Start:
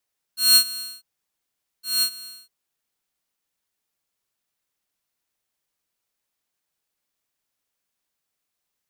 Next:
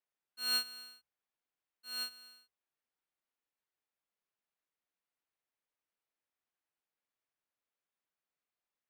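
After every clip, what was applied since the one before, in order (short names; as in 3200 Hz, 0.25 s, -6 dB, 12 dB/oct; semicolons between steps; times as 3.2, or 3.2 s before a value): tone controls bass -6 dB, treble -15 dB; notches 60/120 Hz; gain -8 dB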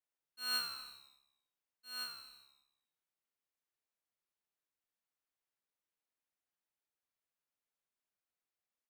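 frequency-shifting echo 81 ms, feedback 57%, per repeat -69 Hz, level -8 dB; dynamic EQ 1200 Hz, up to +6 dB, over -57 dBFS, Q 1.4; gain -4.5 dB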